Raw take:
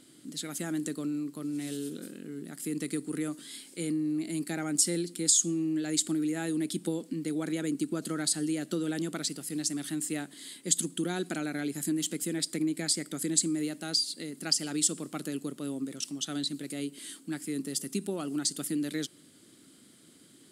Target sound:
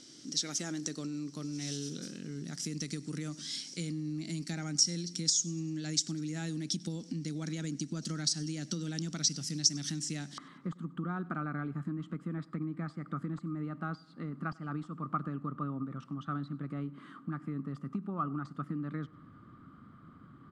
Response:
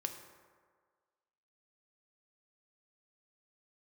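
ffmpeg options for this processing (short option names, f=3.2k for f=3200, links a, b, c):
-af "asubboost=boost=10.5:cutoff=120,acompressor=threshold=-35dB:ratio=4,aeval=exprs='clip(val(0),-1,0.0473)':c=same,asetnsamples=n=441:p=0,asendcmd='10.38 lowpass f 1200',lowpass=f=5.7k:t=q:w=13,aecho=1:1:98|196|294|392:0.0631|0.0347|0.0191|0.0105"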